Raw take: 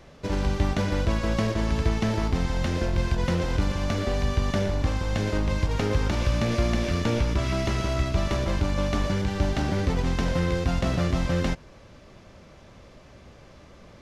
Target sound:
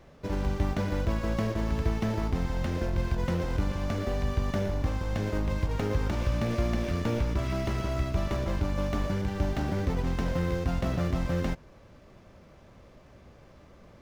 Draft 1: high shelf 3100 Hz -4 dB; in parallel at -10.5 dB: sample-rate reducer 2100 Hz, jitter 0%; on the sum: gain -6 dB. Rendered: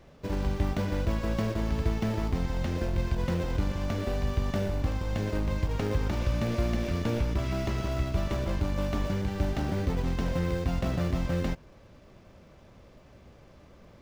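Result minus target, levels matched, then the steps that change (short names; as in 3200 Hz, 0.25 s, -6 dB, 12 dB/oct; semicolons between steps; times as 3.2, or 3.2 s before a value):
sample-rate reducer: distortion +5 dB
change: sample-rate reducer 5900 Hz, jitter 0%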